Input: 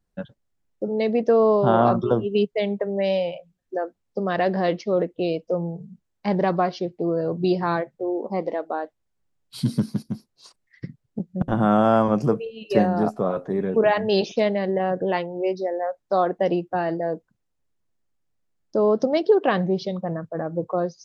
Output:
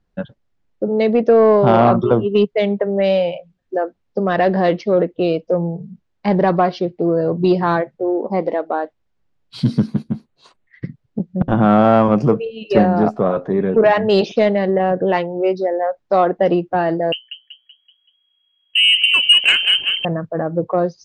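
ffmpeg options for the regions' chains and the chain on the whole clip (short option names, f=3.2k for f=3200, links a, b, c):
-filter_complex "[0:a]asettb=1/sr,asplit=3[a][b][c];[a]atrim=end=9.874[d];[b]atrim=start=9.87:end=10.85,asetpts=PTS-STARTPTS,afade=t=in:d=0.004:c=qsin,afade=t=out:st=0.976:d=0.004:c=qsin,equalizer=f=5.2k:t=o:w=0.4:g=-14.5,asplit=2[e][f];[f]adelay=13,volume=-12dB[g];[e][g]amix=inputs=2:normalize=0,atrim=end_sample=43218[h];[c]atrim=start=10.846[i];[d][h]acrossfade=d=0.004:c1=hsin:c2=qsin[j];[j][i]acrossfade=d=0.004:c1=qsin:c2=hsin,asettb=1/sr,asplit=3[k][l][m];[k]atrim=end=17.124[n];[l]atrim=start=17.12:end=20.05,asetpts=PTS-STARTPTS,afade=t=in:d=0.004:c=qsin,afade=t=out:st=2.926:d=0.004:c=qsin,bandreject=f=60:t=h:w=6,bandreject=f=120:t=h:w=6,bandreject=f=180:t=h:w=6,bandreject=f=240:t=h:w=6,bandreject=f=300:t=h:w=6,asplit=6[o][p][q][r][s][t];[p]adelay=190,afreqshift=-31,volume=-8.5dB[u];[q]adelay=380,afreqshift=-62,volume=-14.9dB[v];[r]adelay=570,afreqshift=-93,volume=-21.3dB[w];[s]adelay=760,afreqshift=-124,volume=-27.6dB[x];[t]adelay=950,afreqshift=-155,volume=-34dB[y];[o][u][v][w][x][y]amix=inputs=6:normalize=0,atrim=end_sample=129213,lowpass=f=2.8k:t=q:w=0.5098,lowpass=f=2.8k:t=q:w=0.6013,lowpass=f=2.8k:t=q:w=0.9,lowpass=f=2.8k:t=q:w=2.563,afreqshift=-3300[z];[m]atrim=start=20.046[aa];[n][z]acrossfade=d=0.004:c1=hsin:c2=qsin[ab];[ab][aa]acrossfade=d=0.004:c1=qsin:c2=hsin,lowpass=4.2k,acontrast=83"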